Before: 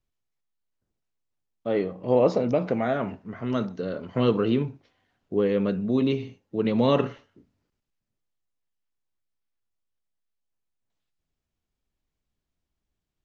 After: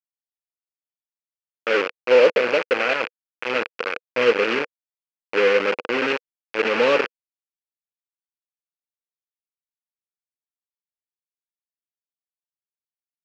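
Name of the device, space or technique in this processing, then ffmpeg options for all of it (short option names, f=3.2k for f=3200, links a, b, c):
hand-held game console: -af "acrusher=bits=3:mix=0:aa=0.000001,highpass=480,equalizer=f=490:t=q:w=4:g=8,equalizer=f=700:t=q:w=4:g=-8,equalizer=f=1k:t=q:w=4:g=-3,equalizer=f=1.5k:t=q:w=4:g=4,equalizer=f=2.5k:t=q:w=4:g=9,equalizer=f=3.7k:t=q:w=4:g=-9,lowpass=f=4.2k:w=0.5412,lowpass=f=4.2k:w=1.3066,volume=4dB"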